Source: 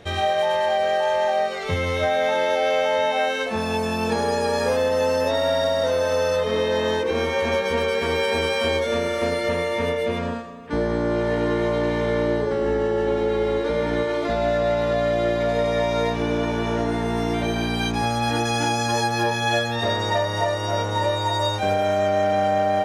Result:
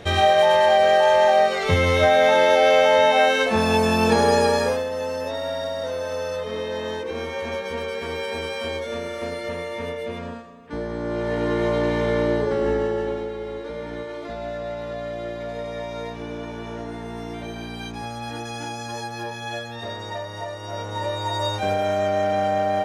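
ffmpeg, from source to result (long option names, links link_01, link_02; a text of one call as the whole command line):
ffmpeg -i in.wav -af "volume=20dB,afade=type=out:start_time=4.39:duration=0.46:silence=0.266073,afade=type=in:start_time=10.94:duration=0.75:silence=0.446684,afade=type=out:start_time=12.69:duration=0.64:silence=0.316228,afade=type=in:start_time=20.6:duration=0.95:silence=0.398107" out.wav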